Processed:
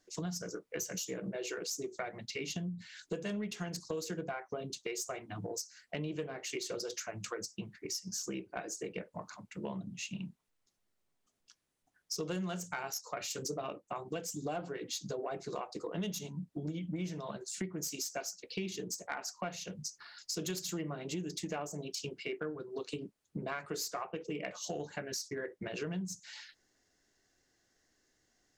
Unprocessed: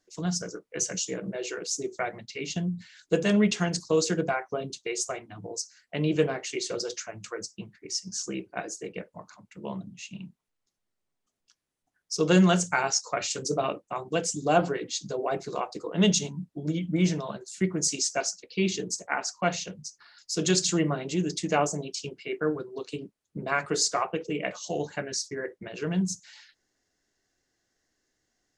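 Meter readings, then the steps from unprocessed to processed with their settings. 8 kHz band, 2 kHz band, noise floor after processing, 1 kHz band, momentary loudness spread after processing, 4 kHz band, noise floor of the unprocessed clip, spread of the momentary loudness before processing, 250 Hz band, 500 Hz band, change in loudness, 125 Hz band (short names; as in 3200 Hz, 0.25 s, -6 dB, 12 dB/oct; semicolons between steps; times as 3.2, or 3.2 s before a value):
-10.0 dB, -10.5 dB, -80 dBFS, -12.0 dB, 5 LU, -9.5 dB, -82 dBFS, 14 LU, -12.0 dB, -11.0 dB, -11.0 dB, -11.5 dB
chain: self-modulated delay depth 0.058 ms; compressor 6:1, threshold -38 dBFS, peak gain reduction 20.5 dB; soft clip -25 dBFS, distortion -28 dB; gain +2 dB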